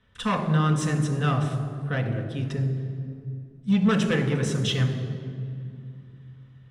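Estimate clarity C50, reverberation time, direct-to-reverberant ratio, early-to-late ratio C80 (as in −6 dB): 7.5 dB, 2.4 s, 3.0 dB, 8.5 dB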